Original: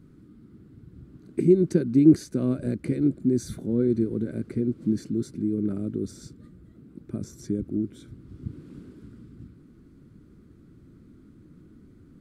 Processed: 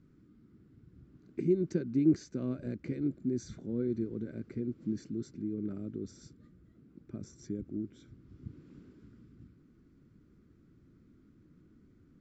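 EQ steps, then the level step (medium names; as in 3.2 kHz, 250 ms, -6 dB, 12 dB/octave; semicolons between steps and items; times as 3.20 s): rippled Chebyshev low-pass 7.5 kHz, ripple 3 dB; -7.0 dB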